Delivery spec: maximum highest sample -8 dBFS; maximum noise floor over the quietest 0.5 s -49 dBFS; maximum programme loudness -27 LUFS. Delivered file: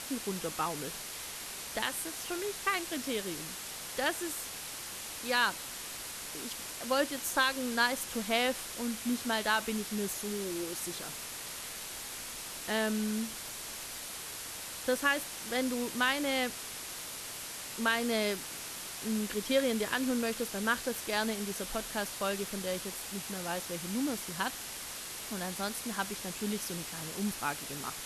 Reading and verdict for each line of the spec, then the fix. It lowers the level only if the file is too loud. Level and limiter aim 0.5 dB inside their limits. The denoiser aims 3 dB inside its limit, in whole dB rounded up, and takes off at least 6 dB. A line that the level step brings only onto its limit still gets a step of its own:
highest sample -15.5 dBFS: pass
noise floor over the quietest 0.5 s -42 dBFS: fail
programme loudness -34.0 LUFS: pass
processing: noise reduction 10 dB, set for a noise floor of -42 dBFS

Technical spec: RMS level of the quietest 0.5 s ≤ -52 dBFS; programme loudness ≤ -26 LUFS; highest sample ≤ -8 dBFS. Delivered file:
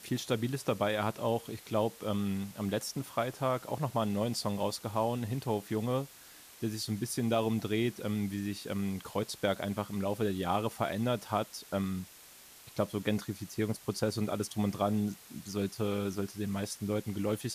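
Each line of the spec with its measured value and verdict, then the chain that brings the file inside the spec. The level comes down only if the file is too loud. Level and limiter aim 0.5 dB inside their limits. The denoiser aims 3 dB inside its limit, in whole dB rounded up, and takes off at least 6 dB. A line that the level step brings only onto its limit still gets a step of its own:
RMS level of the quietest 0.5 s -54 dBFS: pass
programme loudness -34.0 LUFS: pass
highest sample -16.0 dBFS: pass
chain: none needed

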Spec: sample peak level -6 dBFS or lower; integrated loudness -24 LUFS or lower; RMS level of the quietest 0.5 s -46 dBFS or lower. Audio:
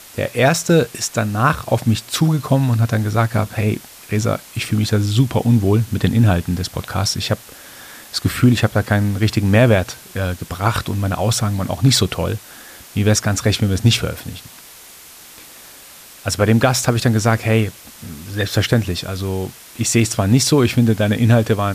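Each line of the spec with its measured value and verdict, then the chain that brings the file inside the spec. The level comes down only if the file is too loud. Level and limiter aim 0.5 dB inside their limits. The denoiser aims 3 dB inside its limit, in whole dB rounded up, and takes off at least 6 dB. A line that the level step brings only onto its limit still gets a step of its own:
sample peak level -2.5 dBFS: fail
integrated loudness -17.5 LUFS: fail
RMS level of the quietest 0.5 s -41 dBFS: fail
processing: trim -7 dB

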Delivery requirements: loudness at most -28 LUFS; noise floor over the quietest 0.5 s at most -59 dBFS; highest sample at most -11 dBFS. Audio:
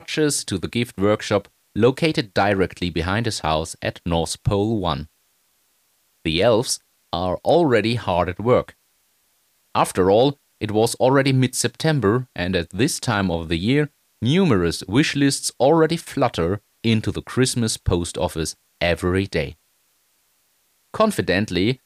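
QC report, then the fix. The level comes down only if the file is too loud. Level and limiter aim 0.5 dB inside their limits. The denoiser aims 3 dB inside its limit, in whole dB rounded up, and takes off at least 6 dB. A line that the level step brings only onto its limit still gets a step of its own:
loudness -20.5 LUFS: fail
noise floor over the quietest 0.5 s -64 dBFS: pass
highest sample -5.0 dBFS: fail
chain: trim -8 dB

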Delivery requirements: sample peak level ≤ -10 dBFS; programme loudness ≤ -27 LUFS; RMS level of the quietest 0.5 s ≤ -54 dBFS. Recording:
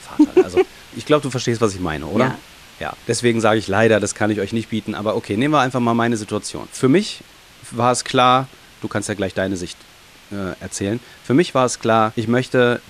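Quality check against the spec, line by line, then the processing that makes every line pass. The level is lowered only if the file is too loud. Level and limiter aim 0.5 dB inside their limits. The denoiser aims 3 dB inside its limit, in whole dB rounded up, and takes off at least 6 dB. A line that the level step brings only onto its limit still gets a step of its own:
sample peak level -2.5 dBFS: fail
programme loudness -19.0 LUFS: fail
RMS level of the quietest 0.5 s -46 dBFS: fail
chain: trim -8.5 dB

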